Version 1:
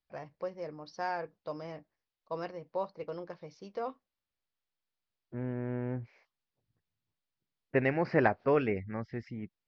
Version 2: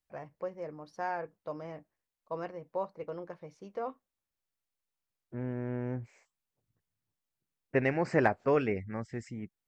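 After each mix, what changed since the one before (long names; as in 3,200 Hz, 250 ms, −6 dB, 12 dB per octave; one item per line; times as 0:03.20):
first voice: add low-pass filter 2,600 Hz 12 dB per octave
master: remove Butterworth low-pass 5,100 Hz 48 dB per octave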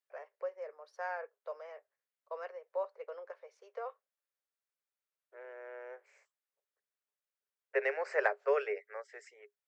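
master: add Chebyshev high-pass with heavy ripple 400 Hz, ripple 6 dB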